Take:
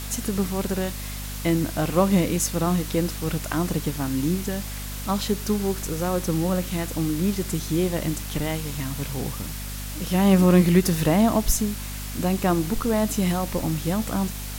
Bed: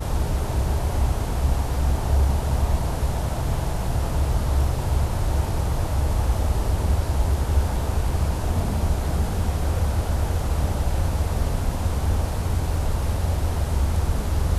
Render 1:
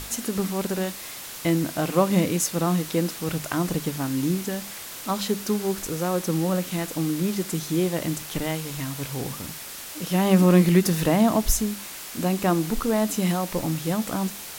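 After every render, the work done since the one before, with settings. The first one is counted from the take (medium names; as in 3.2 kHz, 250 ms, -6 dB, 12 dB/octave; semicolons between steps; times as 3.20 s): hum notches 50/100/150/200/250 Hz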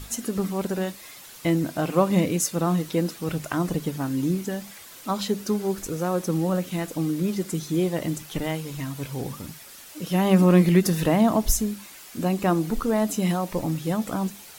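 noise reduction 9 dB, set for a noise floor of -38 dBFS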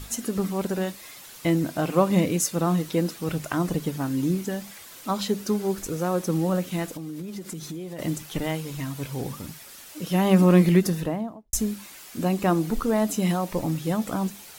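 6.90–7.99 s: compression 12:1, threshold -31 dBFS; 10.65–11.53 s: studio fade out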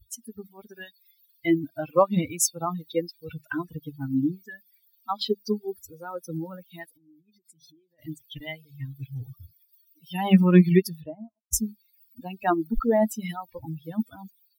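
expander on every frequency bin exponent 3; level rider gain up to 6 dB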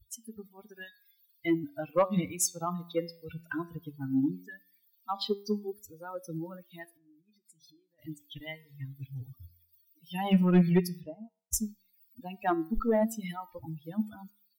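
flange 0.15 Hz, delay 8.6 ms, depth 3.5 ms, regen +86%; saturation -14.5 dBFS, distortion -16 dB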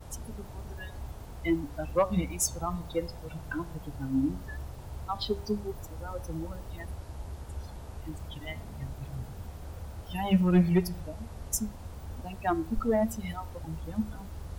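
add bed -19 dB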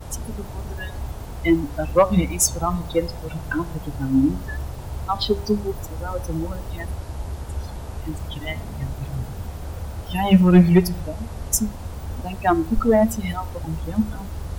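trim +10 dB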